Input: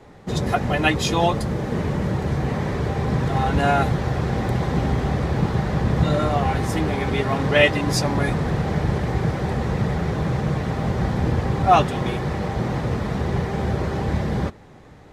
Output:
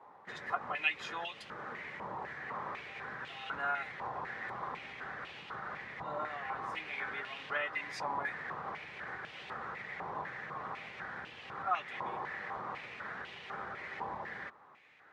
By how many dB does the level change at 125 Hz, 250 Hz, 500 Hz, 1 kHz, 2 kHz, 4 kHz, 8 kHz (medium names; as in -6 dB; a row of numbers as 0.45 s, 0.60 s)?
-35.5 dB, -30.5 dB, -22.5 dB, -14.0 dB, -10.0 dB, -16.5 dB, -26.0 dB